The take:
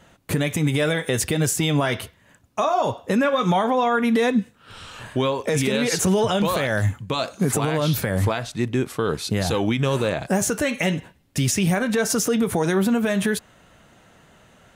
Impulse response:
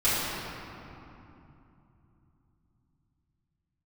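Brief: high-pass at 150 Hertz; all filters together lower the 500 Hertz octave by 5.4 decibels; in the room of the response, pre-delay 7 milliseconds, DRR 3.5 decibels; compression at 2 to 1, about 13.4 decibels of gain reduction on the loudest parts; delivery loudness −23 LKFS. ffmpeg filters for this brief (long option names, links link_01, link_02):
-filter_complex "[0:a]highpass=150,equalizer=frequency=500:width_type=o:gain=-6.5,acompressor=threshold=-44dB:ratio=2,asplit=2[link_01][link_02];[1:a]atrim=start_sample=2205,adelay=7[link_03];[link_02][link_03]afir=irnorm=-1:irlink=0,volume=-18.5dB[link_04];[link_01][link_04]amix=inputs=2:normalize=0,volume=12dB"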